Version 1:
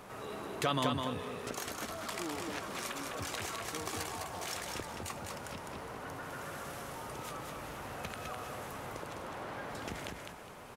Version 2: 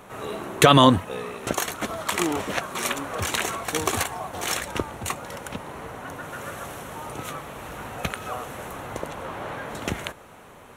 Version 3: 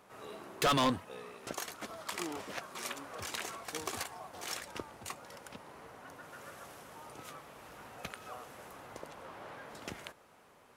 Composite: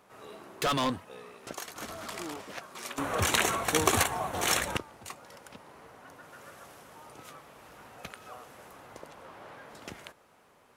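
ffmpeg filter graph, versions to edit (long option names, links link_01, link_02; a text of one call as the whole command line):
ffmpeg -i take0.wav -i take1.wav -i take2.wav -filter_complex "[2:a]asplit=3[link_01][link_02][link_03];[link_01]atrim=end=1.762[link_04];[0:a]atrim=start=1.758:end=2.342[link_05];[link_02]atrim=start=2.338:end=2.982[link_06];[1:a]atrim=start=2.978:end=4.772[link_07];[link_03]atrim=start=4.768[link_08];[link_04][link_05]acrossfade=duration=0.004:curve1=hsin:curve2=hsin[link_09];[link_09][link_06]acrossfade=duration=0.004:curve1=hsin:curve2=hsin[link_10];[link_10][link_07]acrossfade=duration=0.004:curve1=hsin:curve2=hsin[link_11];[link_11][link_08]acrossfade=duration=0.004:curve1=hsin:curve2=hsin" out.wav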